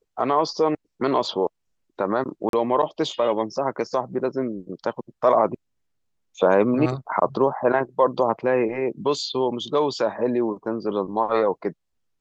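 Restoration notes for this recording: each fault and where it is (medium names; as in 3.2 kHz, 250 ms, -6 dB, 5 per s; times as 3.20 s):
2.49–2.53 s: dropout 42 ms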